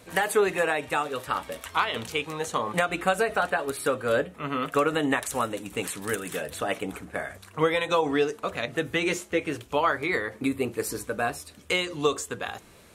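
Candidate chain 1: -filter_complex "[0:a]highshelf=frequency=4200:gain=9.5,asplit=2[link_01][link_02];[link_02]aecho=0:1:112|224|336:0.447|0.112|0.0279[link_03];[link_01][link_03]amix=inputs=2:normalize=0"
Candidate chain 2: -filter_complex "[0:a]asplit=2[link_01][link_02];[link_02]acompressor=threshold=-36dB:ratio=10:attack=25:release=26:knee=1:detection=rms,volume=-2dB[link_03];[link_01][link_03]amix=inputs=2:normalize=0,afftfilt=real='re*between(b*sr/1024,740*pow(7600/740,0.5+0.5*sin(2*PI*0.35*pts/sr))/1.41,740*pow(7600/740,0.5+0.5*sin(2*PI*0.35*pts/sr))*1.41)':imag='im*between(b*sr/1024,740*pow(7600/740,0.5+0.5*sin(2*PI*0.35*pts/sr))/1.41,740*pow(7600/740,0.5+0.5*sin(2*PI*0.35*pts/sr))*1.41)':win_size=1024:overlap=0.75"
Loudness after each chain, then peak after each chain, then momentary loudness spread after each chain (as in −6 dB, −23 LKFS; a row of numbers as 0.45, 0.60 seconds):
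−25.5, −33.5 LKFS; −4.5, −11.5 dBFS; 6, 18 LU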